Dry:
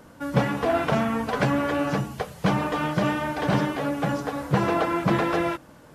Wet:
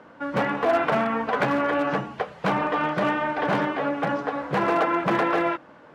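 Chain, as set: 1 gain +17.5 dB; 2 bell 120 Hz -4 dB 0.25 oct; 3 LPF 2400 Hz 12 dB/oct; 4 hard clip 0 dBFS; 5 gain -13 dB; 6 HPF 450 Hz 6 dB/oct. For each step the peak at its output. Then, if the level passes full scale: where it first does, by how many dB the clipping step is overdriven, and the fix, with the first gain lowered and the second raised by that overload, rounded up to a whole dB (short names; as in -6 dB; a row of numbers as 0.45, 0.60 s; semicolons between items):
+9.5, +9.5, +9.0, 0.0, -13.0, -10.5 dBFS; step 1, 9.0 dB; step 1 +8.5 dB, step 5 -4 dB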